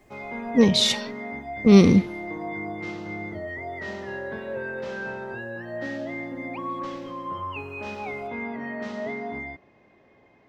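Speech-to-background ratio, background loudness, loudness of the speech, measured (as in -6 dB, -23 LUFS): 14.5 dB, -33.0 LUFS, -18.5 LUFS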